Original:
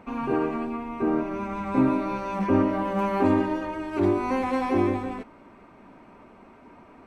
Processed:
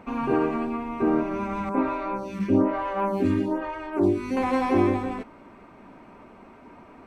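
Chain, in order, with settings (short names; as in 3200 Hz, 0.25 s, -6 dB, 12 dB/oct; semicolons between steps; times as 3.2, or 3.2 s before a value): 1.69–4.37 photocell phaser 1.1 Hz; gain +2 dB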